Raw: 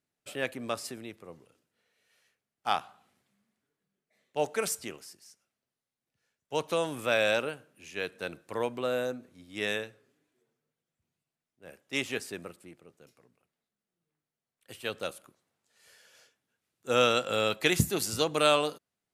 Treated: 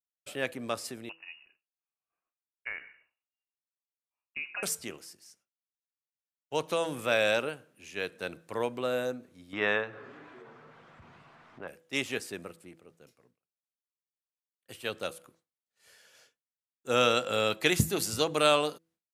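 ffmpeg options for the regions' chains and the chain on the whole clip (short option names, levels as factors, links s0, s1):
-filter_complex "[0:a]asettb=1/sr,asplit=3[s0][s1][s2];[s0]atrim=end=1.094[s3];[s1]atrim=start=1.09:end=4.63,asetpts=PTS-STARTPTS,afade=t=in:d=0.004:c=qsin,afade=t=out:st=3.536:d=0.004:c=qsin,acompressor=threshold=0.0251:ratio=6:attack=3.2:release=140:knee=1:detection=peak,lowpass=f=2600:t=q:w=0.5098,lowpass=f=2600:t=q:w=0.6013,lowpass=f=2600:t=q:w=0.9,lowpass=f=2600:t=q:w=2.563,afreqshift=-3000[s4];[s2]atrim=start=4.626[s5];[s3][s4]acrossfade=d=0.004:c1=hsin:c2=qsin[s6];[s6][s5]acrossfade=d=0.004:c1=qsin:c2=hsin,asettb=1/sr,asplit=3[s7][s8][s9];[s7]atrim=end=9.534[s10];[s8]atrim=start=9.53:end=11.68,asetpts=PTS-STARTPTS,afade=t=in:d=0.004:c=qsin,afade=t=out:st=2.146:d=0.004:c=qsin,equalizer=f=1100:w=0.9:g=12.5,acompressor=mode=upward:threshold=0.0316:ratio=2.5:attack=3.2:release=140:knee=2.83:detection=peak,lowpass=2900[s11];[s9]atrim=start=11.676[s12];[s10][s11]acrossfade=d=0.004:c1=hsin:c2=qsin[s13];[s13][s12]acrossfade=d=0.004:c1=qsin:c2=hsin,bandreject=f=164.5:t=h:w=4,bandreject=f=329:t=h:w=4,bandreject=f=493.5:t=h:w=4,agate=range=0.0224:threshold=0.001:ratio=3:detection=peak"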